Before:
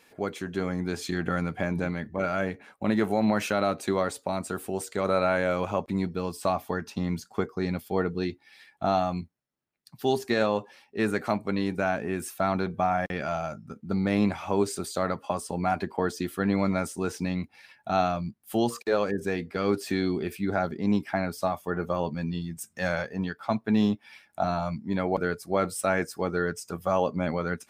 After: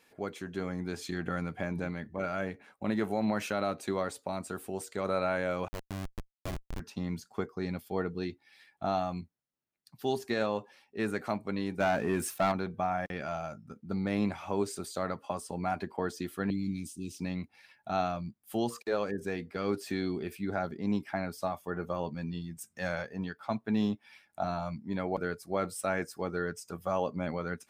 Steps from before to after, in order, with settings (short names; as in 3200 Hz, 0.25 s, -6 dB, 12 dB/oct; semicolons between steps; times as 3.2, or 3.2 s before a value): 5.68–6.8 Schmitt trigger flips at -22.5 dBFS; 11.8–12.52 sample leveller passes 2; 16.5–17.19 elliptic band-stop 310–2700 Hz, stop band 40 dB; gain -6 dB